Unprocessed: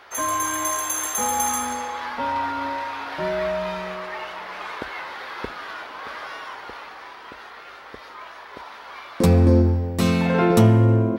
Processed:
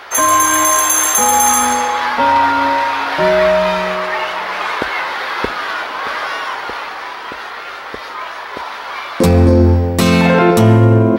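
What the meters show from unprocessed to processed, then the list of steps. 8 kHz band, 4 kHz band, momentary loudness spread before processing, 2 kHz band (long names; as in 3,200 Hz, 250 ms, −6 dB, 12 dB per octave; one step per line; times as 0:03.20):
+12.5 dB, +12.5 dB, 23 LU, +13.0 dB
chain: low-shelf EQ 300 Hz −5 dB
boost into a limiter +15 dB
level −1 dB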